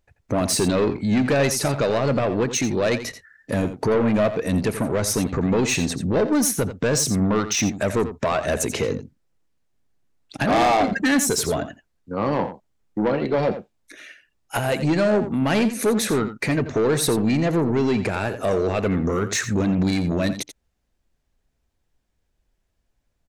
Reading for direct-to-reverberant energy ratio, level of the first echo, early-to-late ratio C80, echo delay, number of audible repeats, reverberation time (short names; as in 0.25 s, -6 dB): none, -11.5 dB, none, 86 ms, 1, none